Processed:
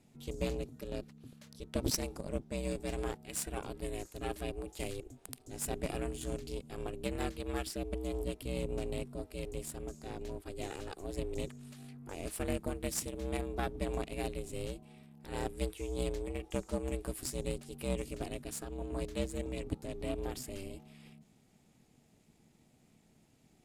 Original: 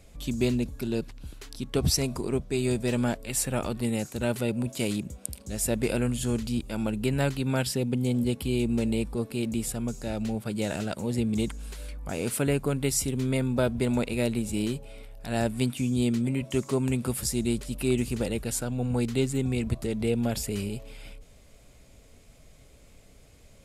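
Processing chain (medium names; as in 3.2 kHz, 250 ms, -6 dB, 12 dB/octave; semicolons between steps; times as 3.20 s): Chebyshev shaper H 2 -7 dB, 7 -24 dB, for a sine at -9.5 dBFS; ring modulator 190 Hz; trim -4.5 dB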